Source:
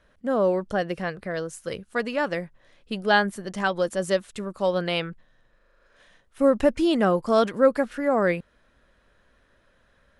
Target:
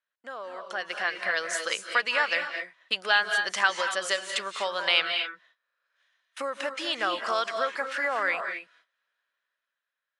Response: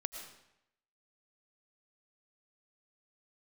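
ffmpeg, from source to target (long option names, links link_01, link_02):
-filter_complex "[0:a]agate=range=-26dB:threshold=-51dB:ratio=16:detection=peak,lowpass=6100,acompressor=threshold=-29dB:ratio=6,highpass=1300[link_01];[1:a]atrim=start_sample=2205,atrim=end_sample=6174,asetrate=22932,aresample=44100[link_02];[link_01][link_02]afir=irnorm=-1:irlink=0,dynaudnorm=framelen=110:gausssize=17:maxgain=9dB,volume=3.5dB"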